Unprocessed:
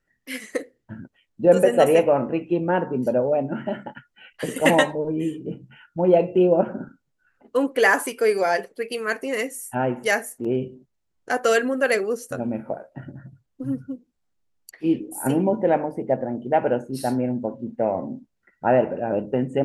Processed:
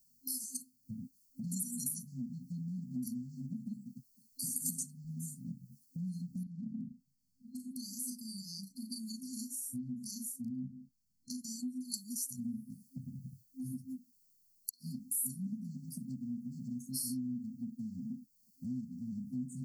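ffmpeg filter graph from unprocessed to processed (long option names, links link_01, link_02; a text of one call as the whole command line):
ffmpeg -i in.wav -filter_complex "[0:a]asettb=1/sr,asplit=3[link_01][link_02][link_03];[link_01]atrim=end=6.434[link_04];[link_02]atrim=start=6.43:end=11.94,asetpts=PTS-STARTPTS,afade=type=in:duration=0.004:curve=qsin,afade=type=out:start_time=5.506:duration=0.004:curve=qsin,lowpass=frequency=1500:poles=1,asplit=2[link_05][link_06];[link_06]adelay=36,volume=-3dB[link_07];[link_05][link_07]amix=inputs=2:normalize=0,atrim=end_sample=242991,acompressor=threshold=-21dB:ratio=5:attack=3.2:release=140:knee=1:detection=peak[link_08];[link_03]atrim=start=11.936[link_09];[link_04][link_08]acrossfade=duration=0.004:curve1=hsin:curve2=qsin[link_10];[link_10][link_09]acrossfade=duration=0.004:curve1=qsin:curve2=hsin,aemphasis=mode=production:type=bsi,afftfilt=real='re*(1-between(b*sr/4096,260,4200))':imag='im*(1-between(b*sr/4096,260,4200))':win_size=4096:overlap=0.75,acompressor=threshold=-49dB:ratio=2.5,volume=6dB" out.wav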